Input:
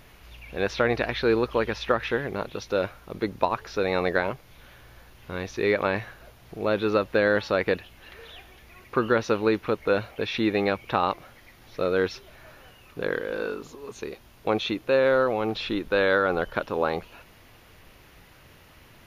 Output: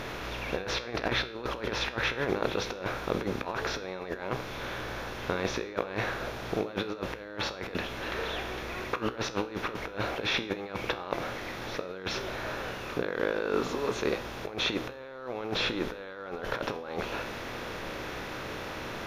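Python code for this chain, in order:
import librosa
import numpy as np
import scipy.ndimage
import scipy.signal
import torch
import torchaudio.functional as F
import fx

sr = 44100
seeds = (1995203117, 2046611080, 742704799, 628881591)

y = fx.bin_compress(x, sr, power=0.6)
y = fx.over_compress(y, sr, threshold_db=-26.0, ratio=-0.5)
y = fx.comb_fb(y, sr, f0_hz=62.0, decay_s=0.5, harmonics='all', damping=0.0, mix_pct=60)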